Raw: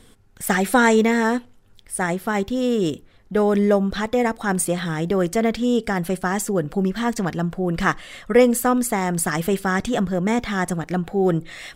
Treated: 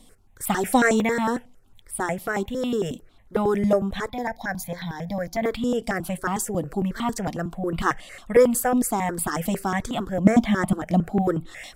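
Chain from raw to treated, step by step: 4.1–5.42 fixed phaser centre 1900 Hz, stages 8; 10.24–11.21 small resonant body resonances 210/620/3100 Hz, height 13 dB -> 9 dB; step phaser 11 Hz 410–1700 Hz

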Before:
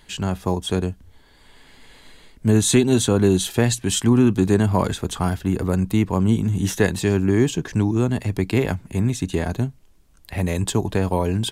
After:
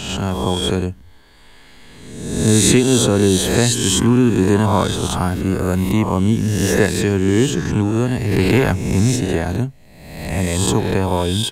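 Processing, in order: spectral swells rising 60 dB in 1.04 s; 8.31–9.16 sample leveller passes 1; gain +1.5 dB

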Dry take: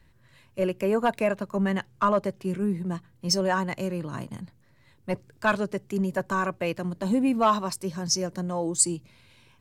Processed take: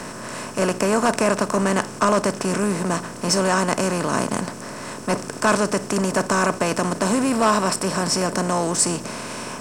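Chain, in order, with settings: per-bin compression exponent 0.4; 7.29–8.34 notch 6300 Hz, Q 7.9

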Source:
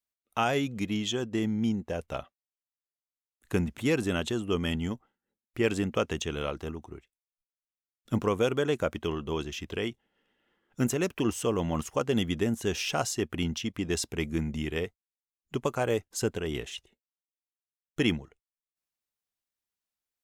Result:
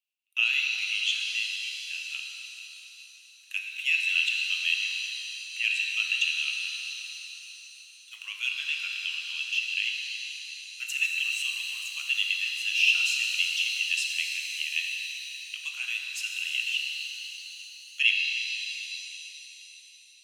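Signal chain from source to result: ladder high-pass 2600 Hz, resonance 85%; shimmer reverb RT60 3.7 s, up +7 st, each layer -8 dB, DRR 0.5 dB; gain +8.5 dB

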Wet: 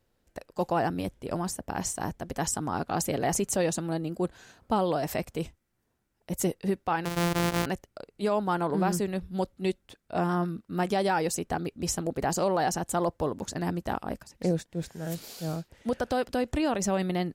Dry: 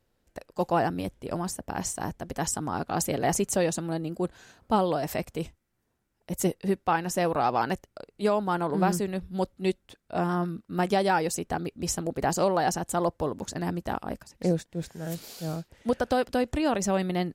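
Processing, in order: 7.05–7.66 sample sorter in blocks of 256 samples; limiter -17 dBFS, peak gain reduction 5.5 dB

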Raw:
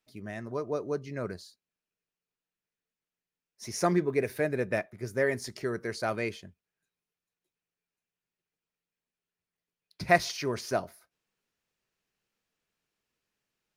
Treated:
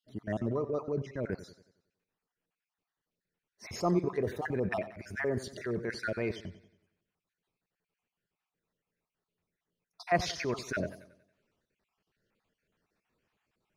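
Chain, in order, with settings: random spectral dropouts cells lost 44%; LPF 1400 Hz 6 dB/oct; in parallel at 0 dB: negative-ratio compressor -40 dBFS, ratio -0.5; on the sum: transient shaper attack -5 dB, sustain -1 dB; warbling echo 92 ms, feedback 46%, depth 85 cents, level -15 dB

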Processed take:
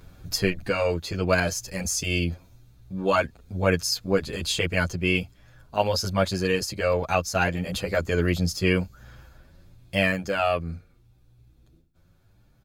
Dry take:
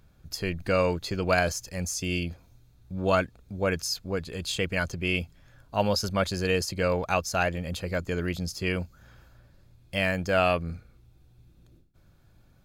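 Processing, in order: vocal rider 0.5 s; endless flanger 8.8 ms +0.83 Hz; gain +6 dB

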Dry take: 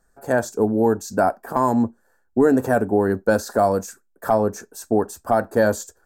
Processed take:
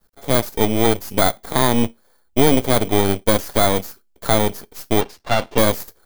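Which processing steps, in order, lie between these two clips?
FFT order left unsorted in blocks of 16 samples; 5.01–5.58 three-band isolator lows -13 dB, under 220 Hz, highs -18 dB, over 6200 Hz; half-wave rectifier; gain +5.5 dB

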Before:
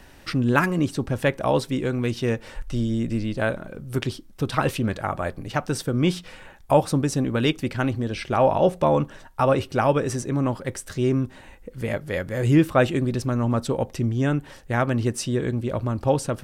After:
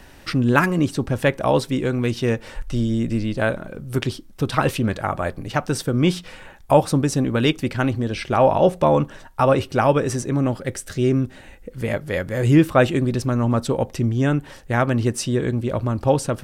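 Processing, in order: 10.38–11.7 bell 1000 Hz -10 dB 0.28 oct; gain +3 dB

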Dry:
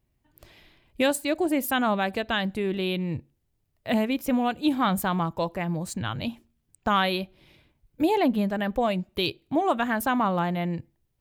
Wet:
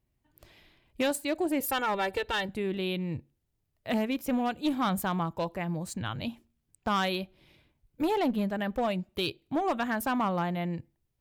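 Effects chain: 1.6–2.49 comb 2.2 ms, depth 88%; one-sided clip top -21.5 dBFS, bottom -15 dBFS; gain -4 dB

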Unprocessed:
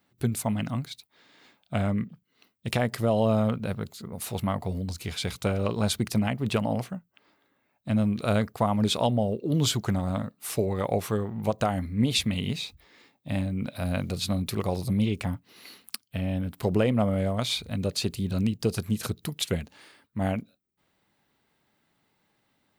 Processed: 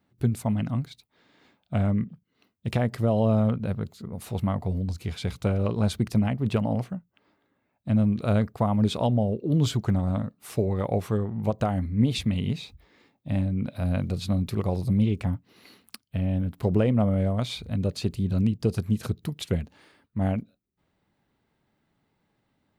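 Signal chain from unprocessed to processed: tilt -2 dB/oct; gain -2.5 dB

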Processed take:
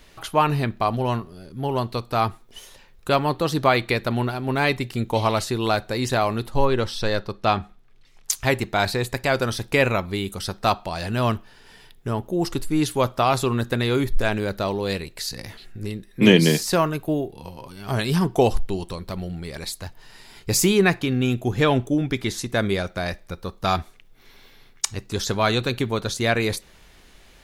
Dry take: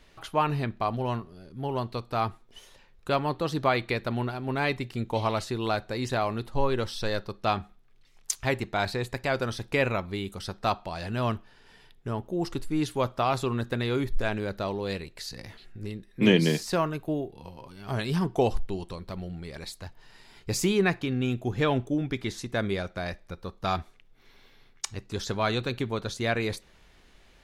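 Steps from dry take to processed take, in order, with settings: high shelf 7900 Hz +9.5 dB, from 6.65 s -2.5 dB, from 8.31 s +10 dB; gain +6 dB

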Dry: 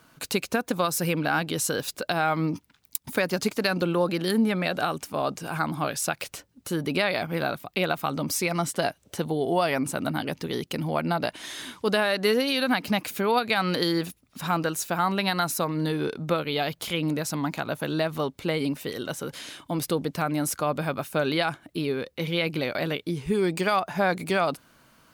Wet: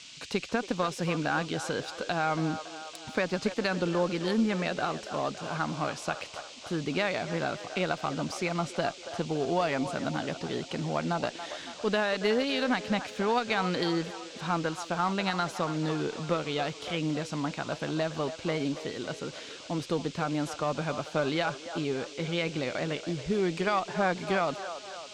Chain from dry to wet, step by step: band noise 2400–8200 Hz -40 dBFS; air absorption 110 m; band-limited delay 0.28 s, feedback 57%, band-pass 860 Hz, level -10 dB; added harmonics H 8 -33 dB, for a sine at -5 dBFS; gain -3.5 dB

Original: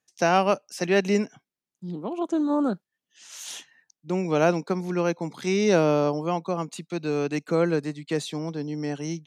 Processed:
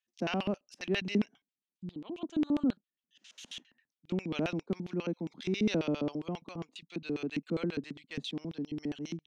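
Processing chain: LFO band-pass square 7.4 Hz 240–3100 Hz

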